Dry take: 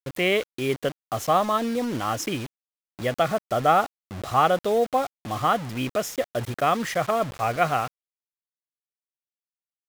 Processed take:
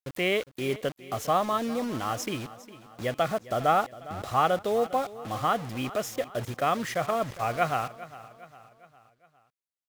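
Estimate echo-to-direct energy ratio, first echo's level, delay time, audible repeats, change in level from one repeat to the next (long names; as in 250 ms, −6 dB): −16.0 dB, −17.0 dB, 406 ms, 3, −6.0 dB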